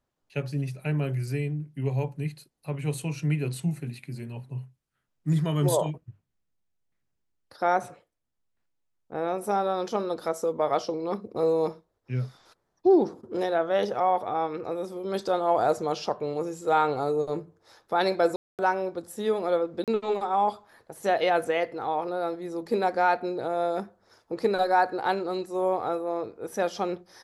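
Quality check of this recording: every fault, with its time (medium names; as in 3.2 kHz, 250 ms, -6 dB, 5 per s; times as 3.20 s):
18.36–18.59 s: dropout 228 ms
19.84–19.88 s: dropout 37 ms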